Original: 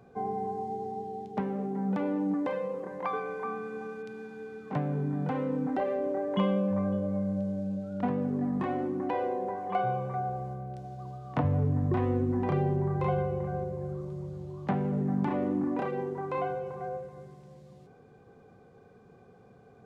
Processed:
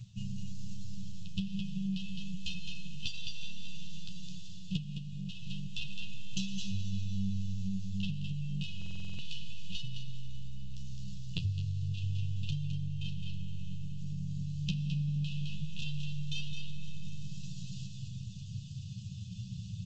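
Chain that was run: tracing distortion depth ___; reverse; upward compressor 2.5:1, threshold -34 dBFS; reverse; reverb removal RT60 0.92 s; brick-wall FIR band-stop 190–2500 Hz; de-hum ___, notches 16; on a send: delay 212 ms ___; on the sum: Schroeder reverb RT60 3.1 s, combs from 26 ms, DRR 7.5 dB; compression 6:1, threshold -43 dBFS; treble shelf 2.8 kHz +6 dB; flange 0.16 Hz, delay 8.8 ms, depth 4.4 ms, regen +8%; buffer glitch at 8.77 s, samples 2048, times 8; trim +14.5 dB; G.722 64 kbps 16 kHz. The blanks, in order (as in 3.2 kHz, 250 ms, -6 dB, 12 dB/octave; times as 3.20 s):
0.26 ms, 325.2 Hz, -6 dB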